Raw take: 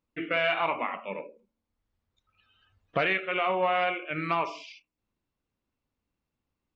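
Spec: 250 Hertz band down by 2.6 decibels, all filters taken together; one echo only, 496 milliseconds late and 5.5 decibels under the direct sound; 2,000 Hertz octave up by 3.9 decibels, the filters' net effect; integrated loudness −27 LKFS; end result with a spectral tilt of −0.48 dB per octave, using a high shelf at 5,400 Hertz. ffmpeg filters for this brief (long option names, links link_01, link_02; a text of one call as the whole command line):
ffmpeg -i in.wav -af "equalizer=frequency=250:width_type=o:gain=-4.5,equalizer=frequency=2000:width_type=o:gain=4,highshelf=frequency=5400:gain=5.5,aecho=1:1:496:0.531,volume=-1dB" out.wav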